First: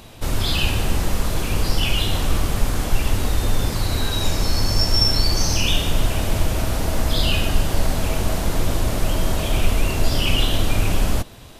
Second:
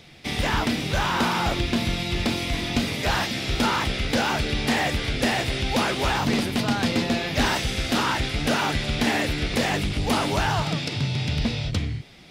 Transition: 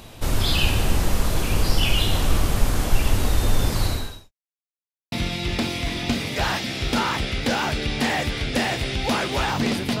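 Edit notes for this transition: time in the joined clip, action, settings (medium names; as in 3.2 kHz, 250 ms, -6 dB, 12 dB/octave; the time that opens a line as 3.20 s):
first
3.86–4.32 s: fade out quadratic
4.32–5.12 s: mute
5.12 s: go over to second from 1.79 s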